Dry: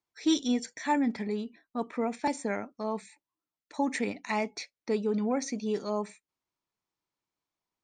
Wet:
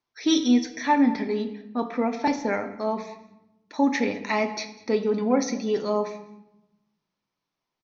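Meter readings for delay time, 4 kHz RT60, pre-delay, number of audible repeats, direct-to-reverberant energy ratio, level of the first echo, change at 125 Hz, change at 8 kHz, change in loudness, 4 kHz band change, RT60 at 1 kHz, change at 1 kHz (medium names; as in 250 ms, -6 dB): 198 ms, 0.65 s, 8 ms, 1, 6.0 dB, -21.0 dB, no reading, +4.0 dB, +6.5 dB, +6.5 dB, 0.85 s, +6.5 dB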